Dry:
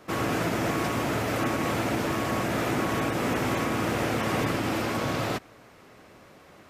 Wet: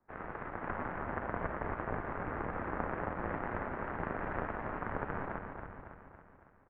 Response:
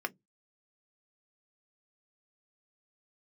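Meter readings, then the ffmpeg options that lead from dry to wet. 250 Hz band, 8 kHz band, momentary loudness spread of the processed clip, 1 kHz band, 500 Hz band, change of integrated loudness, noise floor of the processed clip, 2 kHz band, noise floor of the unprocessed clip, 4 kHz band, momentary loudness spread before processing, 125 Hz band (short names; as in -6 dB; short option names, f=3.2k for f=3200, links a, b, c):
-14.5 dB, under -40 dB, 10 LU, -8.5 dB, -11.0 dB, -11.5 dB, -62 dBFS, -10.0 dB, -53 dBFS, under -30 dB, 2 LU, -12.5 dB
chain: -filter_complex "[0:a]acrossover=split=290[a][b];[a]adelay=480[c];[c][b]amix=inputs=2:normalize=0,aeval=exprs='0.2*(cos(1*acos(clip(val(0)/0.2,-1,1)))-cos(1*PI/2))+0.0708*(cos(3*acos(clip(val(0)/0.2,-1,1)))-cos(3*PI/2))+0.0501*(cos(4*acos(clip(val(0)/0.2,-1,1)))-cos(4*PI/2))+0.0112*(cos(6*acos(clip(val(0)/0.2,-1,1)))-cos(6*PI/2))':c=same,asplit=2[d][e];[e]aecho=0:1:278|556|834|1112|1390|1668|1946:0.473|0.256|0.138|0.0745|0.0402|0.0217|0.0117[f];[d][f]amix=inputs=2:normalize=0,highpass=f=310:t=q:w=0.5412,highpass=f=310:t=q:w=1.307,lowpass=f=2.1k:t=q:w=0.5176,lowpass=f=2.1k:t=q:w=0.7071,lowpass=f=2.1k:t=q:w=1.932,afreqshift=-360,volume=1dB"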